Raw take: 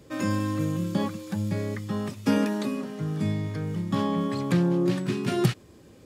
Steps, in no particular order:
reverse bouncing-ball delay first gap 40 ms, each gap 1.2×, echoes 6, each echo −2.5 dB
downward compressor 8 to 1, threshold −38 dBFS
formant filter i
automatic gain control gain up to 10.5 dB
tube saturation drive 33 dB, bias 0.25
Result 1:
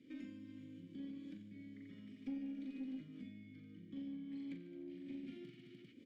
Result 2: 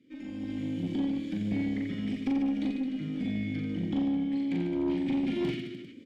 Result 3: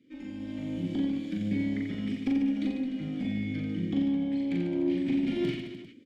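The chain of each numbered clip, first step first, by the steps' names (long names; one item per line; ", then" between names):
reverse bouncing-ball delay, then automatic gain control, then downward compressor, then formant filter, then tube saturation
formant filter, then downward compressor, then reverse bouncing-ball delay, then tube saturation, then automatic gain control
formant filter, then downward compressor, then tube saturation, then automatic gain control, then reverse bouncing-ball delay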